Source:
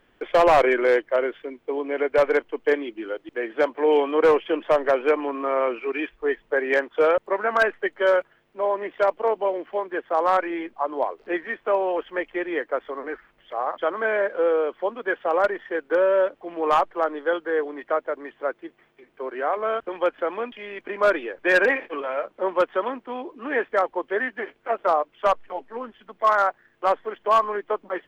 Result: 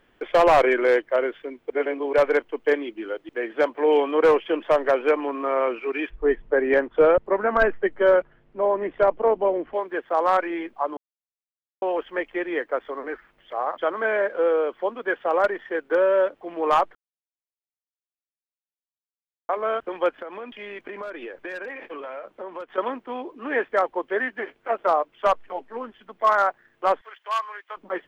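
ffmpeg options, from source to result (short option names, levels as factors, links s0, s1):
-filter_complex "[0:a]asettb=1/sr,asplit=3[s0][s1][s2];[s0]atrim=end=6.104[s3];[s1]atrim=start=6.1:end=9.74,asetpts=PTS-STARTPTS,afade=t=in:d=0.004:c=qsin,afade=t=out:st=3.636:d=0.004:c=qsin,aemphasis=mode=reproduction:type=riaa[s4];[s2]atrim=start=9.736[s5];[s3][s4]acrossfade=d=0.004:c1=hsin:c2=qsin[s6];[s6][s5]acrossfade=d=0.004:c1=qsin:c2=hsin,asettb=1/sr,asplit=3[s7][s8][s9];[s7]atrim=end=20.154[s10];[s8]atrim=start=20.15:end=22.78,asetpts=PTS-STARTPTS,afade=t=in:d=0.004:c=qsin,afade=t=out:st=2.626:d=0.004:c=qsin,acompressor=threshold=0.0282:ratio=10:attack=3.2:release=140:knee=1:detection=peak[s11];[s9]atrim=start=22.776[s12];[s10][s11]acrossfade=d=0.004:c1=hsin:c2=qsin[s13];[s13][s12]acrossfade=d=0.004:c1=qsin:c2=hsin,asettb=1/sr,asplit=3[s14][s15][s16];[s14]atrim=end=27.014[s17];[s15]atrim=start=27.01:end=27.77,asetpts=PTS-STARTPTS,afade=t=in:d=0.004:c=qsin,afade=t=out:st=0.756:d=0.004:c=qsin,highpass=1500[s18];[s16]atrim=start=27.766[s19];[s17][s18]acrossfade=d=0.004:c1=hsin:c2=qsin[s20];[s20][s19]acrossfade=d=0.004:c1=qsin:c2=hsin,asplit=7[s21][s22][s23][s24][s25][s26][s27];[s21]atrim=end=1.702[s28];[s22]atrim=start=1.698:end=2.132,asetpts=PTS-STARTPTS,areverse[s29];[s23]atrim=start=2.128:end=10.97,asetpts=PTS-STARTPTS,afade=t=out:st=8.838:d=0.004:c=hsin[s30];[s24]atrim=start=10.97:end=11.82,asetpts=PTS-STARTPTS,volume=0[s31];[s25]atrim=start=11.82:end=16.95,asetpts=PTS-STARTPTS,afade=t=in:d=0.004:c=hsin,afade=t=out:st=5.126:d=0.004:c=hsin[s32];[s26]atrim=start=16.95:end=19.49,asetpts=PTS-STARTPTS,volume=0[s33];[s27]atrim=start=19.49,asetpts=PTS-STARTPTS,afade=t=in:d=0.004:c=hsin[s34];[s28][s29]acrossfade=d=0.004:c1=hsin:c2=hsin[s35];[s30][s31][s32][s33][s34]concat=n=5:v=0:a=1[s36];[s35][s36]acrossfade=d=0.004:c1=hsin:c2=hsin"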